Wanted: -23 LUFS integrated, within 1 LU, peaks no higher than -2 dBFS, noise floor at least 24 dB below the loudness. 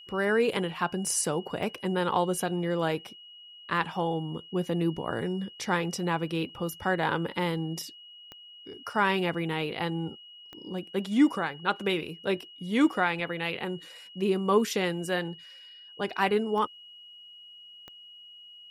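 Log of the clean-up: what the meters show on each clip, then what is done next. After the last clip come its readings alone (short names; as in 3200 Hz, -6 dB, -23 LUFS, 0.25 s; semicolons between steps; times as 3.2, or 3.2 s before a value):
clicks 6; steady tone 2900 Hz; tone level -47 dBFS; loudness -29.0 LUFS; peak -11.5 dBFS; loudness target -23.0 LUFS
-> de-click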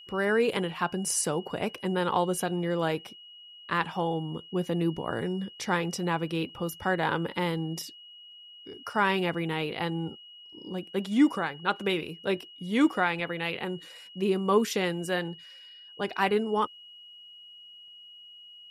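clicks 0; steady tone 2900 Hz; tone level -47 dBFS
-> notch 2900 Hz, Q 30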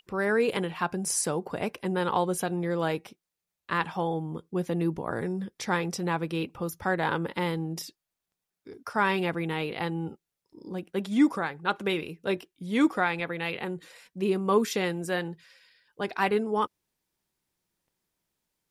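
steady tone none; loudness -29.0 LUFS; peak -11.5 dBFS; loudness target -23.0 LUFS
-> gain +6 dB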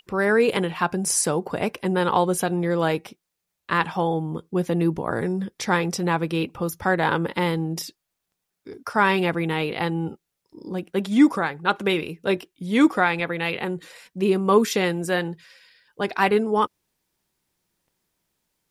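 loudness -23.0 LUFS; peak -5.5 dBFS; noise floor -81 dBFS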